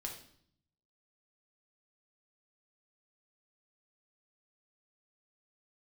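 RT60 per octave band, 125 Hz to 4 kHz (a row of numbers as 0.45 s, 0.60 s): 1.1 s, 0.90 s, 0.65 s, 0.60 s, 0.55 s, 0.60 s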